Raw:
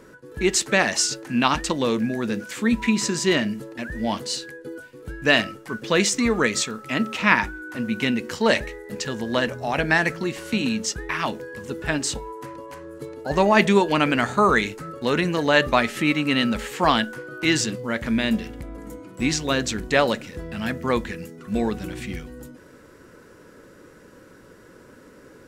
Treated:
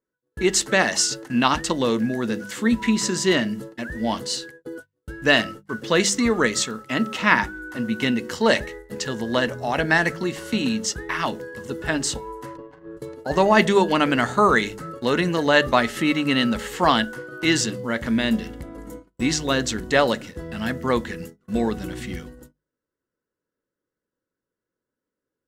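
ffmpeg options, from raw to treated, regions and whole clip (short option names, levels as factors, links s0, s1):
-filter_complex "[0:a]asettb=1/sr,asplit=3[s0][s1][s2];[s0]atrim=end=12.574[s3];[s1]atrim=start=12.57:end=12.97,asetpts=PTS-STARTPTS,afade=t=in:d=0.004:c=qsin,afade=t=out:st=0.396:d=0.004:c=qsin,aecho=1:1:6.5:0.61,atrim=end_sample=17640,aeval=exprs='val(0)+0.00316*(sin(2*PI*50*n/s)+sin(2*PI*2*50*n/s)/2+sin(2*PI*3*50*n/s)/3+sin(2*PI*4*50*n/s)/4+sin(2*PI*5*50*n/s)/5)':c=same,adynamicsmooth=sensitivity=4:basefreq=1500[s4];[s2]atrim=start=12.966[s5];[s3][s4]acrossfade=d=0.004:c1=hsin:c2=qsin[s6];[s6][s5]acrossfade=d=0.004:c1=qsin:c2=hsin,bandreject=f=2400:w=8.1,agate=range=0.0112:threshold=0.0141:ratio=16:detection=peak,bandreject=f=50:t=h:w=6,bandreject=f=100:t=h:w=6,bandreject=f=150:t=h:w=6,bandreject=f=200:t=h:w=6,volume=1.12"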